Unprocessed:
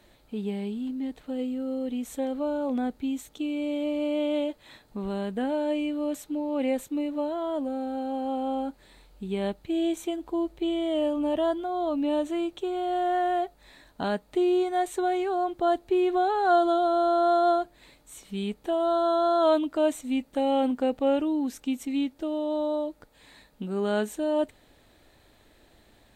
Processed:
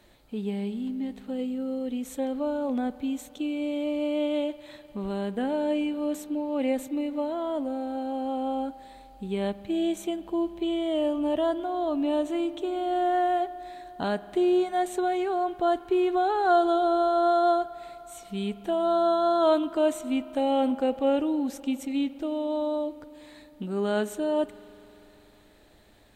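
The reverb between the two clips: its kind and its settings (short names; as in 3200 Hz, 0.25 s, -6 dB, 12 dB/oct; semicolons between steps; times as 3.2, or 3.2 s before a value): spring tank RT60 3.7 s, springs 50 ms, chirp 45 ms, DRR 15.5 dB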